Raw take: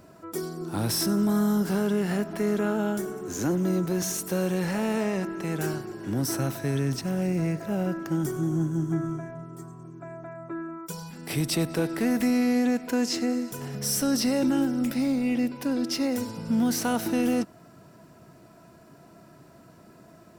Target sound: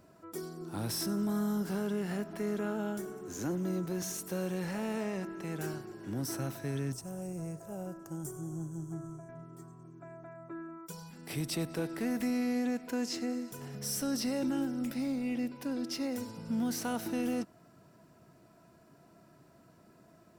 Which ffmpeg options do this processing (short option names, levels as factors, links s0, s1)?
-filter_complex "[0:a]asettb=1/sr,asplit=3[s0][s1][s2];[s0]atrim=end=6.924[s3];[s1]atrim=start=6.92:end=9.29,asetpts=PTS-STARTPTS,afade=t=in:d=0.004:c=qsin,afade=t=out:st=2.366:d=0.004:c=qsin,equalizer=f=250:t=o:w=1:g=-10,equalizer=f=2000:t=o:w=1:g=-12,equalizer=f=4000:t=o:w=1:g=-11,equalizer=f=8000:t=o:w=1:g=9[s4];[s2]atrim=start=9.286[s5];[s3][s4]acrossfade=d=0.004:c1=hsin:c2=qsin[s6];[s6][s5]acrossfade=d=0.004:c1=qsin:c2=hsin,volume=0.376"